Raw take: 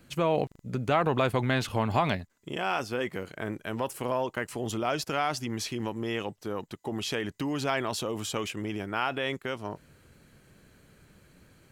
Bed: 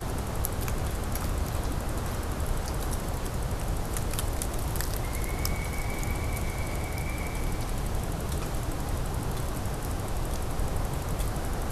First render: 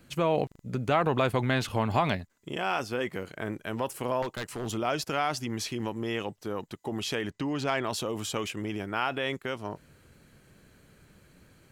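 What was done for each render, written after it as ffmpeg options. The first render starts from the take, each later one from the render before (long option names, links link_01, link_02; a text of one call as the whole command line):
ffmpeg -i in.wav -filter_complex "[0:a]asettb=1/sr,asplit=3[link_01][link_02][link_03];[link_01]atrim=end=4.224[link_04];[link_02]atrim=start=4.22:end=4.71,asetpts=PTS-STARTPTS,afade=type=in:duration=0.004:curve=qsin,afade=type=out:start_time=0.486:duration=0.004:curve=qsin,aeval=exprs='0.0473*(abs(mod(val(0)/0.0473+3,4)-2)-1)':channel_layout=same[link_05];[link_03]atrim=start=4.706[link_06];[link_04][link_05]acrossfade=duration=0.004:curve1=hsin:curve2=qsin[link_07];[link_07][link_06]acrossfade=duration=0.004:curve1=qsin:curve2=hsin,asettb=1/sr,asplit=3[link_08][link_09][link_10];[link_08]atrim=end=7.314[link_11];[link_09]atrim=start=7.31:end=7.84,asetpts=PTS-STARTPTS,afade=type=in:duration=0.004:curve=qsin,afade=type=out:start_time=0.526:duration=0.004:curve=qsin,adynamicsmooth=sensitivity=4:basefreq=6400[link_12];[link_10]atrim=start=7.836[link_13];[link_11][link_12]acrossfade=duration=0.004:curve1=hsin:curve2=qsin[link_14];[link_14][link_13]acrossfade=duration=0.004:curve1=qsin:curve2=hsin" out.wav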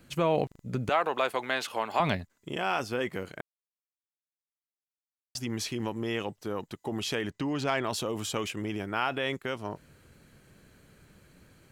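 ffmpeg -i in.wav -filter_complex "[0:a]asettb=1/sr,asplit=3[link_01][link_02][link_03];[link_01]atrim=end=0.894[link_04];[link_02]atrim=start=0.89:end=2,asetpts=PTS-STARTPTS,afade=type=in:duration=0.004:curve=qsin,afade=type=out:start_time=1.106:duration=0.004:curve=qsin,highpass=500[link_05];[link_03]atrim=start=1.996[link_06];[link_04][link_05]acrossfade=duration=0.004:curve1=hsin:curve2=qsin[link_07];[link_07][link_06]acrossfade=duration=0.004:curve1=qsin:curve2=hsin,asplit=3[link_08][link_09][link_10];[link_08]atrim=end=3.41,asetpts=PTS-STARTPTS,afade=type=out:start_time=3.406:duration=0.004:curve=hsin[link_11];[link_09]atrim=start=3.41:end=5.35,asetpts=PTS-STARTPTS,volume=0[link_12];[link_10]atrim=start=5.35,asetpts=PTS-STARTPTS,afade=type=in:duration=0.004:curve=hsin[link_13];[link_11][link_12][link_13]concat=n=3:v=0:a=1" out.wav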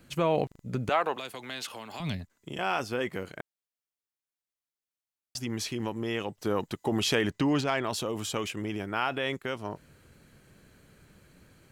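ffmpeg -i in.wav -filter_complex "[0:a]asettb=1/sr,asplit=3[link_01][link_02][link_03];[link_01]atrim=end=1.164[link_04];[link_02]atrim=start=1.16:end=2.59,asetpts=PTS-STARTPTS,afade=type=in:duration=0.004:curve=qsin,afade=type=out:start_time=1.426:duration=0.004:curve=qsin,acrossover=split=250|3000[link_05][link_06][link_07];[link_06]acompressor=threshold=-40dB:ratio=6:attack=3.2:release=140:knee=2.83:detection=peak[link_08];[link_05][link_08][link_07]amix=inputs=3:normalize=0[link_09];[link_03]atrim=start=2.586[link_10];[link_04][link_09]acrossfade=duration=0.004:curve1=hsin:curve2=qsin[link_11];[link_11][link_10]acrossfade=duration=0.004:curve1=qsin:curve2=hsin,asplit=3[link_12][link_13][link_14];[link_12]afade=type=out:start_time=6.37:duration=0.02[link_15];[link_13]acontrast=37,afade=type=in:start_time=6.37:duration=0.02,afade=type=out:start_time=7.6:duration=0.02[link_16];[link_14]afade=type=in:start_time=7.6:duration=0.02[link_17];[link_15][link_16][link_17]amix=inputs=3:normalize=0" out.wav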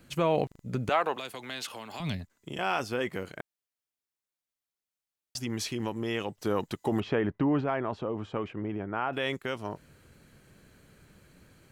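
ffmpeg -i in.wav -filter_complex "[0:a]asettb=1/sr,asplit=3[link_01][link_02][link_03];[link_01]atrim=end=7.004[link_04];[link_02]atrim=start=7:end=9.13,asetpts=PTS-STARTPTS,afade=type=in:duration=0.004:curve=qsin,afade=type=out:start_time=2.126:duration=0.004:curve=qsin,lowpass=1400[link_05];[link_03]atrim=start=9.126[link_06];[link_04][link_05]acrossfade=duration=0.004:curve1=hsin:curve2=qsin[link_07];[link_07][link_06]acrossfade=duration=0.004:curve1=qsin:curve2=hsin" out.wav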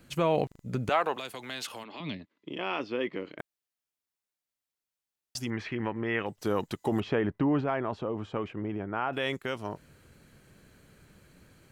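ffmpeg -i in.wav -filter_complex "[0:a]asplit=3[link_01][link_02][link_03];[link_01]afade=type=out:start_time=1.83:duration=0.02[link_04];[link_02]highpass=220,equalizer=frequency=300:width_type=q:width=4:gain=7,equalizer=frequency=750:width_type=q:width=4:gain=-8,equalizer=frequency=1500:width_type=q:width=4:gain=-8,lowpass=frequency=3900:width=0.5412,lowpass=frequency=3900:width=1.3066,afade=type=in:start_time=1.83:duration=0.02,afade=type=out:start_time=3.38:duration=0.02[link_05];[link_03]afade=type=in:start_time=3.38:duration=0.02[link_06];[link_04][link_05][link_06]amix=inputs=3:normalize=0,asettb=1/sr,asplit=3[link_07][link_08][link_09];[link_07]atrim=end=5.504[link_10];[link_08]atrim=start=5.5:end=6.26,asetpts=PTS-STARTPTS,afade=type=in:duration=0.004:curve=qsin,afade=type=out:start_time=0.756:duration=0.004:curve=qsin,lowpass=frequency=1900:width_type=q:width=2.4[link_11];[link_09]atrim=start=6.256[link_12];[link_10][link_11]acrossfade=duration=0.004:curve1=hsin:curve2=qsin[link_13];[link_13][link_12]acrossfade=duration=0.004:curve1=qsin:curve2=hsin" out.wav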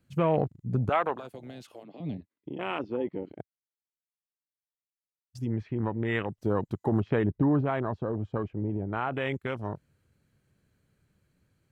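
ffmpeg -i in.wav -af "afwtdn=0.0158,equalizer=frequency=100:width=0.79:gain=7.5" out.wav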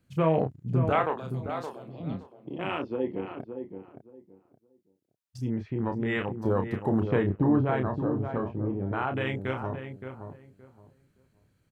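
ffmpeg -i in.wav -filter_complex "[0:a]asplit=2[link_01][link_02];[link_02]adelay=31,volume=-6.5dB[link_03];[link_01][link_03]amix=inputs=2:normalize=0,asplit=2[link_04][link_05];[link_05]adelay=570,lowpass=frequency=1300:poles=1,volume=-7.5dB,asplit=2[link_06][link_07];[link_07]adelay=570,lowpass=frequency=1300:poles=1,volume=0.22,asplit=2[link_08][link_09];[link_09]adelay=570,lowpass=frequency=1300:poles=1,volume=0.22[link_10];[link_06][link_08][link_10]amix=inputs=3:normalize=0[link_11];[link_04][link_11]amix=inputs=2:normalize=0" out.wav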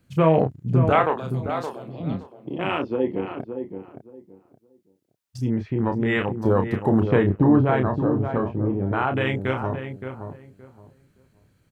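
ffmpeg -i in.wav -af "volume=6.5dB" out.wav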